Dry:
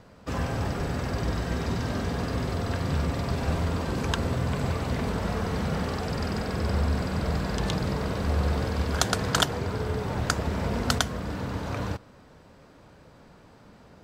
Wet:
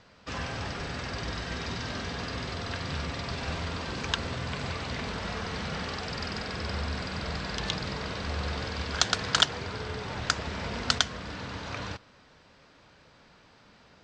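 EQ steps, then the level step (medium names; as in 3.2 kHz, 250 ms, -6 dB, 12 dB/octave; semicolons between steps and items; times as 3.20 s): Bessel low-pass 4.3 kHz, order 6; tilt shelf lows -8.5 dB, about 1.5 kHz; 0.0 dB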